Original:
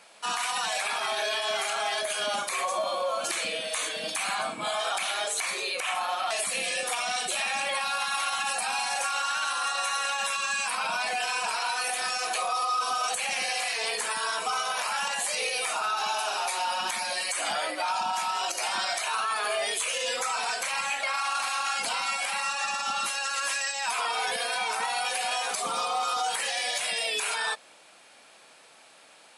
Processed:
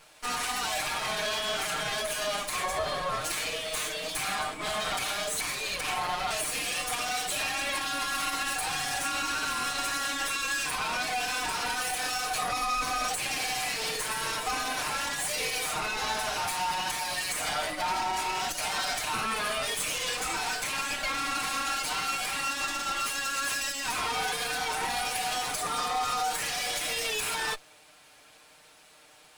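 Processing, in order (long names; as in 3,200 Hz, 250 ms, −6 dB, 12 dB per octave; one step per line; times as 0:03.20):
lower of the sound and its delayed copy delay 6.6 ms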